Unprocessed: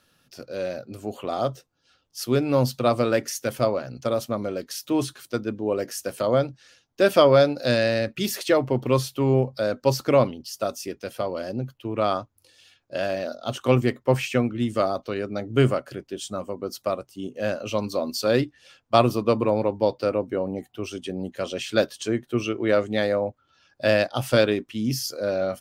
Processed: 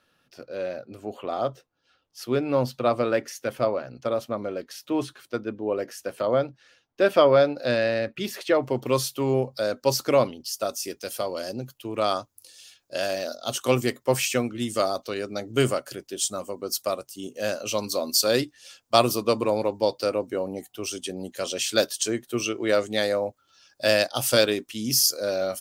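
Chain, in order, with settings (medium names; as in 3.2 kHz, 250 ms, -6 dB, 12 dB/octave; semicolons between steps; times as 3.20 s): tone controls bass -6 dB, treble -8 dB, from 8.62 s treble +7 dB, from 10.84 s treble +14 dB; trim -1 dB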